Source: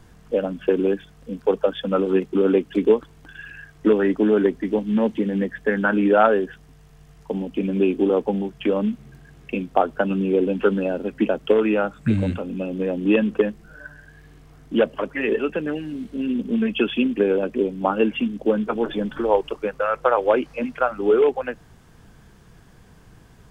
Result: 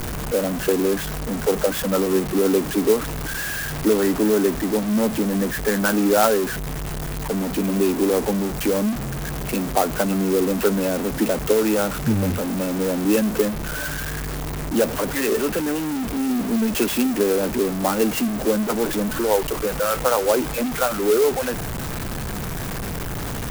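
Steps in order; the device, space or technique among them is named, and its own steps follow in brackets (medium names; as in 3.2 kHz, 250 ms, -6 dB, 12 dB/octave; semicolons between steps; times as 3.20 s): early CD player with a faulty converter (jump at every zero crossing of -19 dBFS; sampling jitter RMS 0.066 ms); trim -3 dB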